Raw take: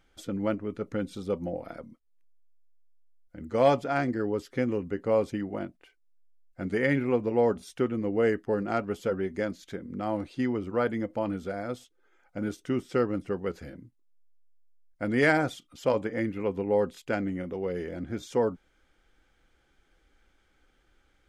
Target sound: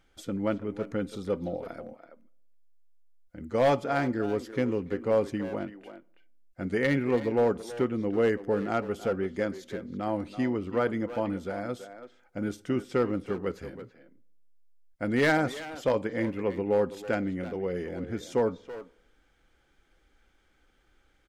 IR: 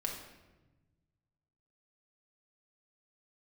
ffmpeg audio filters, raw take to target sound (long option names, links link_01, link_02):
-filter_complex "[0:a]asplit=2[link_01][link_02];[1:a]atrim=start_sample=2205,asetrate=83790,aresample=44100,adelay=54[link_03];[link_02][link_03]afir=irnorm=-1:irlink=0,volume=-20dB[link_04];[link_01][link_04]amix=inputs=2:normalize=0,volume=17dB,asoftclip=hard,volume=-17dB,asplit=2[link_05][link_06];[link_06]adelay=330,highpass=300,lowpass=3400,asoftclip=type=hard:threshold=-26dB,volume=-10dB[link_07];[link_05][link_07]amix=inputs=2:normalize=0"